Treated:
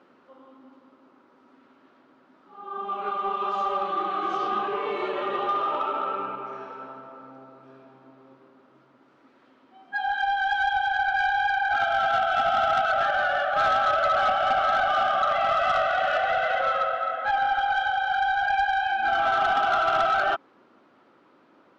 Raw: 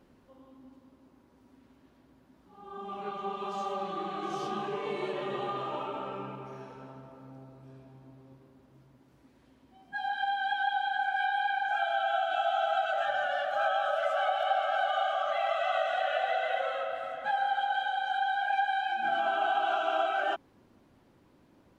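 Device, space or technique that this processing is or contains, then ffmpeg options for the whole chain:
intercom: -filter_complex "[0:a]asettb=1/sr,asplit=3[link_01][link_02][link_03];[link_01]atrim=end=4.374[link_04];[link_02]atrim=start=4.37:end=4.91,asetpts=PTS-STARTPTS,afade=type=in:duration=0.004:curve=qsin,afade=type=out:start_time=0.536:duration=0.004:curve=qsin,lowpass=5700[link_05];[link_03]atrim=start=4.906[link_06];[link_04][link_05]acrossfade=duration=0.004:curve1=hsin:curve2=qsin[link_07];[link_07][link_06]acrossfade=duration=0.004:curve1=qsin:curve2=hsin,highpass=320,lowpass=3800,equalizer=frequency=1300:width_type=o:width=0.3:gain=10,asoftclip=type=tanh:threshold=-23dB,volume=6.5dB"

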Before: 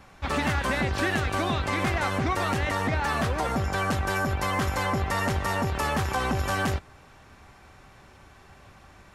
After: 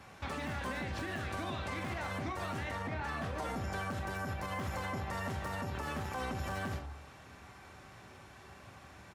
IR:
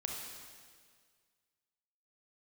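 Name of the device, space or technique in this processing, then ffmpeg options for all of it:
podcast mastering chain: -filter_complex "[0:a]bandreject=frequency=71.85:width_type=h:width=4,bandreject=frequency=143.7:width_type=h:width=4,bandreject=frequency=215.55:width_type=h:width=4,bandreject=frequency=287.4:width_type=h:width=4,bandreject=frequency=359.25:width_type=h:width=4,bandreject=frequency=431.1:width_type=h:width=4,bandreject=frequency=502.95:width_type=h:width=4,bandreject=frequency=574.8:width_type=h:width=4,bandreject=frequency=646.65:width_type=h:width=4,bandreject=frequency=718.5:width_type=h:width=4,bandreject=frequency=790.35:width_type=h:width=4,bandreject=frequency=862.2:width_type=h:width=4,bandreject=frequency=934.05:width_type=h:width=4,bandreject=frequency=1005.9:width_type=h:width=4,bandreject=frequency=1077.75:width_type=h:width=4,bandreject=frequency=1149.6:width_type=h:width=4,bandreject=frequency=1221.45:width_type=h:width=4,bandreject=frequency=1293.3:width_type=h:width=4,bandreject=frequency=1365.15:width_type=h:width=4,asettb=1/sr,asplit=3[link_01][link_02][link_03];[link_01]atrim=end=2.714[link_04];[link_02]atrim=start=2.71:end=3.31,asetpts=PTS-STARTPTS,afade=type=in:duration=0.004:curve=qsin,afade=type=out:start_time=0.596:duration=0.004:curve=qsin,highshelf=frequency=4600:gain=-8[link_05];[link_03]atrim=start=3.306[link_06];[link_04][link_05]acrossfade=duration=0.004:curve1=hsin:curve2=qsin[link_07];[link_07][link_06]acrossfade=duration=0.004:curve1=qsin:curve2=hsin,highpass=frequency=60:width=0.5412,highpass=frequency=60:width=1.3066,aecho=1:1:27|43|72:0.316|0.266|0.224,deesser=0.9,acompressor=threshold=-31dB:ratio=3,alimiter=level_in=3dB:limit=-24dB:level=0:latency=1:release=134,volume=-3dB,volume=-1.5dB" -ar 48000 -c:a libmp3lame -b:a 96k

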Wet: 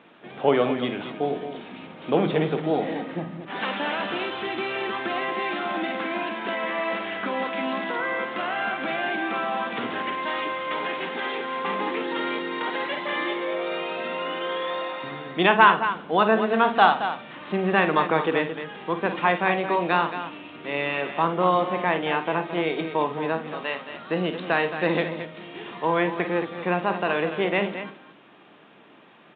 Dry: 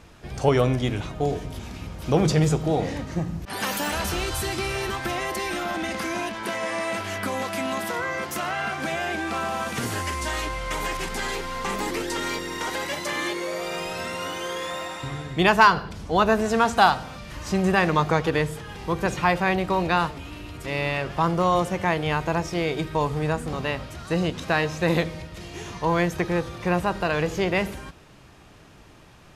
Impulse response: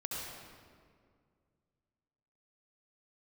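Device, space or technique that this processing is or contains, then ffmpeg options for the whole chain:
Bluetooth headset: -filter_complex "[0:a]asettb=1/sr,asplit=3[link_01][link_02][link_03];[link_01]atrim=end=23.414[link_04];[link_02]atrim=start=23.41:end=23.87,asetpts=PTS-STARTPTS,afade=type=in:duration=0.004:curve=qsin,afade=type=out:start_time=0.456:duration=0.004:curve=qsin,lowshelf=frequency=400:gain=-10[link_05];[link_03]atrim=start=23.866[link_06];[link_04][link_05]acrossfade=duration=0.004:curve1=hsin:curve2=qsin[link_07];[link_07][link_06]acrossfade=duration=0.004:curve1=qsin:curve2=hsin,highpass=frequency=200:width=0.5412,highpass=frequency=200:width=1.3066,aecho=1:1:49.56|221.6:0.316|0.316,aresample=8000,aresample=44100" -ar 16000 -c:a sbc -b:a 64k

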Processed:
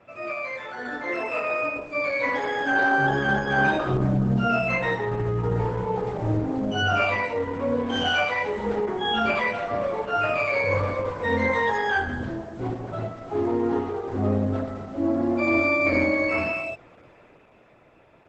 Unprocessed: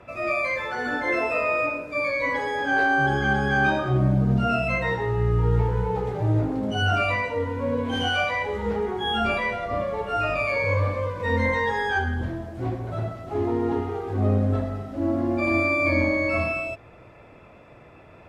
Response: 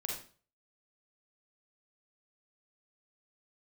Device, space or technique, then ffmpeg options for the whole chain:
video call: -filter_complex "[0:a]asplit=3[link_01][link_02][link_03];[link_01]afade=type=out:start_time=13.86:duration=0.02[link_04];[link_02]bandreject=frequency=164.5:width_type=h:width=4,bandreject=frequency=329:width_type=h:width=4,bandreject=frequency=493.5:width_type=h:width=4,bandreject=frequency=658:width_type=h:width=4,bandreject=frequency=822.5:width_type=h:width=4,bandreject=frequency=987:width_type=h:width=4,bandreject=frequency=1151.5:width_type=h:width=4,bandreject=frequency=1316:width_type=h:width=4,bandreject=frequency=1480.5:width_type=h:width=4,bandreject=frequency=1645:width_type=h:width=4,bandreject=frequency=1809.5:width_type=h:width=4,bandreject=frequency=1974:width_type=h:width=4,bandreject=frequency=2138.5:width_type=h:width=4,bandreject=frequency=2303:width_type=h:width=4,bandreject=frequency=2467.5:width_type=h:width=4,bandreject=frequency=2632:width_type=h:width=4,bandreject=frequency=2796.5:width_type=h:width=4,bandreject=frequency=2961:width_type=h:width=4,bandreject=frequency=3125.5:width_type=h:width=4,bandreject=frequency=3290:width_type=h:width=4,bandreject=frequency=3454.5:width_type=h:width=4,bandreject=frequency=3619:width_type=h:width=4,afade=type=in:start_time=13.86:duration=0.02,afade=type=out:start_time=14.61:duration=0.02[link_05];[link_03]afade=type=in:start_time=14.61:duration=0.02[link_06];[link_04][link_05][link_06]amix=inputs=3:normalize=0,highpass=130,dynaudnorm=framelen=190:gausssize=17:maxgain=7.5dB,volume=-5.5dB" -ar 48000 -c:a libopus -b:a 12k

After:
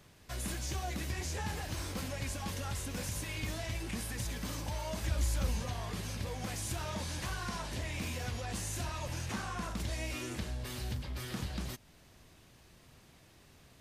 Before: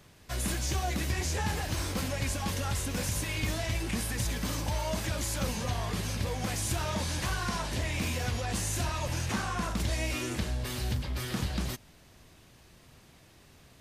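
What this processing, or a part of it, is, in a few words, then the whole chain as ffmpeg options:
parallel compression: -filter_complex "[0:a]asplit=2[link_01][link_02];[link_02]acompressor=threshold=-43dB:ratio=6,volume=-3.5dB[link_03];[link_01][link_03]amix=inputs=2:normalize=0,asettb=1/sr,asplit=3[link_04][link_05][link_06];[link_04]atrim=end=5.024[link_07];[link_05]atrim=start=5.02:end=5.62,asetpts=PTS-STARTPTS,afade=type=in:duration=0.004:curve=qsin,afade=type=out:start_time=0.596:duration=0.004:curve=qsin,equalizer=frequency=62:width_type=o:width=0.73:gain=14[link_08];[link_06]atrim=start=5.616[link_09];[link_07][link_08]acrossfade=duration=0.004:curve1=hsin:curve2=qsin[link_10];[link_10][link_09]acrossfade=duration=0.004:curve1=qsin:curve2=hsin,volume=-7.5dB"

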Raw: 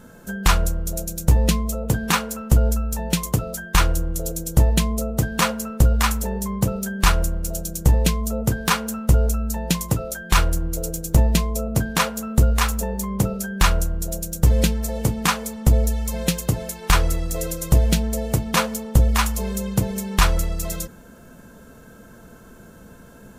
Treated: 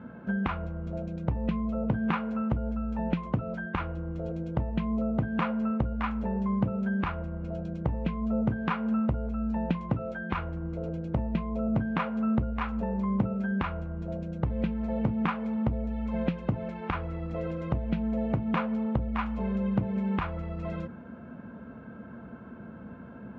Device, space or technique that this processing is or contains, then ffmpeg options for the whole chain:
bass amplifier: -af "acompressor=threshold=-25dB:ratio=4,highpass=frequency=68:width=0.5412,highpass=frequency=68:width=1.3066,equalizer=frequency=230:width_type=q:width=4:gain=6,equalizer=frequency=440:width_type=q:width=4:gain=-4,equalizer=frequency=1800:width_type=q:width=4:gain=-5,lowpass=frequency=2300:width=0.5412,lowpass=frequency=2300:width=1.3066"

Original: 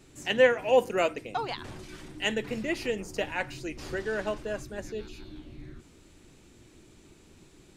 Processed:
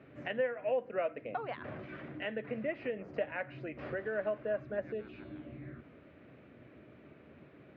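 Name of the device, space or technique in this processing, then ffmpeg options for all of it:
bass amplifier: -af "acompressor=threshold=-38dB:ratio=4,highpass=frequency=90:width=0.5412,highpass=frequency=90:width=1.3066,equalizer=frequency=97:width_type=q:width=4:gain=-8,equalizer=frequency=180:width_type=q:width=4:gain=-5,equalizer=frequency=350:width_type=q:width=4:gain=-7,equalizer=frequency=600:width_type=q:width=4:gain=8,equalizer=frequency=890:width_type=q:width=4:gain=-8,lowpass=frequency=2200:width=0.5412,lowpass=frequency=2200:width=1.3066,volume=3.5dB"

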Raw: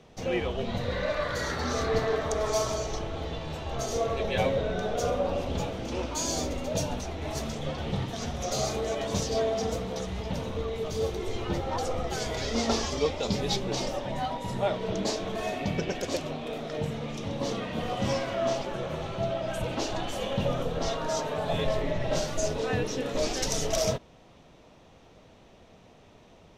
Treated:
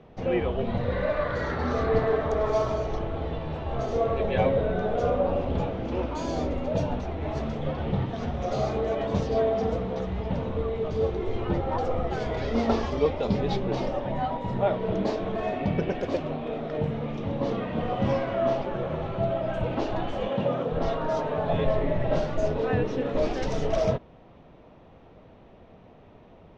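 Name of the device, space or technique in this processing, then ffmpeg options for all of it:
phone in a pocket: -filter_complex "[0:a]asettb=1/sr,asplit=3[link_01][link_02][link_03];[link_01]atrim=end=20.294[link_04];[link_02]atrim=start=20.29:end=20.72,asetpts=PTS-STARTPTS,afade=type=in:duration=0.004:curve=qsin,afade=type=out:start_time=0.426:duration=0.004:curve=qsin,highpass=170[link_05];[link_03]atrim=start=20.716[link_06];[link_04][link_05]acrossfade=duration=0.004:curve1=hsin:curve2=qsin[link_07];[link_07][link_06]acrossfade=duration=0.004:curve1=qsin:curve2=hsin,lowpass=3500,highshelf=frequency=2400:gain=-11.5,volume=4dB"

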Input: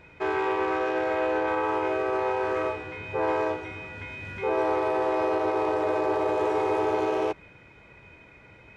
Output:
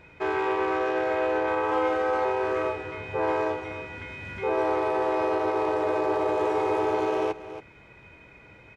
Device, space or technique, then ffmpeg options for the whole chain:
ducked delay: -filter_complex "[0:a]asplit=3[link_01][link_02][link_03];[link_02]adelay=278,volume=-9dB[link_04];[link_03]apad=whole_len=398776[link_05];[link_04][link_05]sidechaincompress=threshold=-31dB:ratio=8:attack=16:release=552[link_06];[link_01][link_06]amix=inputs=2:normalize=0,asettb=1/sr,asplit=3[link_07][link_08][link_09];[link_07]atrim=end=1.714[link_10];[link_08]atrim=start=1.71:end=2.25,asetpts=PTS-STARTPTS,afade=type=in:duration=0.004:curve=qsin,afade=type=out:start_time=0.536:duration=0.004:curve=qsin,aecho=1:1:3.8:0.88,atrim=end_sample=23814[link_11];[link_09]atrim=start=2.246[link_12];[link_10][link_11]acrossfade=duration=0.004:curve1=hsin:curve2=qsin[link_13];[link_13][link_12]acrossfade=duration=0.004:curve1=qsin:curve2=hsin"

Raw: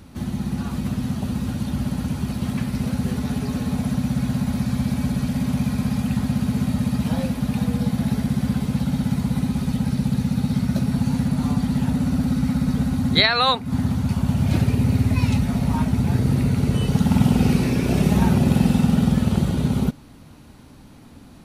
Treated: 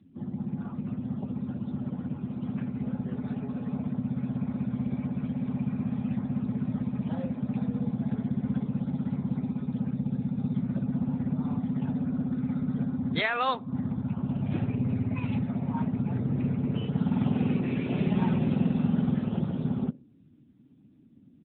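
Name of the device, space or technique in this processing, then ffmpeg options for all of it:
mobile call with aggressive noise cancelling: -filter_complex "[0:a]asettb=1/sr,asplit=3[link_01][link_02][link_03];[link_01]atrim=end=17.604[link_04];[link_02]atrim=start=17.6:end=18.54,asetpts=PTS-STARTPTS,afade=type=in:duration=0.004:curve=qsin,afade=type=out:start_time=0.936:duration=0.004:curve=qsin,adynamicequalizer=threshold=0.00398:dfrequency=3000:dqfactor=1.1:tfrequency=3000:tqfactor=1.1:attack=5:release=100:ratio=0.375:range=2:mode=boostabove:tftype=bell[link_05];[link_03]atrim=start=18.536[link_06];[link_04][link_05]acrossfade=duration=0.004:curve1=hsin:curve2=qsin[link_07];[link_07][link_06]acrossfade=duration=0.004:curve1=qsin:curve2=hsin,highpass=120,asplit=2[link_08][link_09];[link_09]adelay=63,lowpass=frequency=1300:poles=1,volume=-21.5dB,asplit=2[link_10][link_11];[link_11]adelay=63,lowpass=frequency=1300:poles=1,volume=0.52,asplit=2[link_12][link_13];[link_13]adelay=63,lowpass=frequency=1300:poles=1,volume=0.52,asplit=2[link_14][link_15];[link_15]adelay=63,lowpass=frequency=1300:poles=1,volume=0.52[link_16];[link_08][link_10][link_12][link_14][link_16]amix=inputs=5:normalize=0,afftdn=noise_reduction=23:noise_floor=-39,volume=-7dB" -ar 8000 -c:a libopencore_amrnb -b:a 10200

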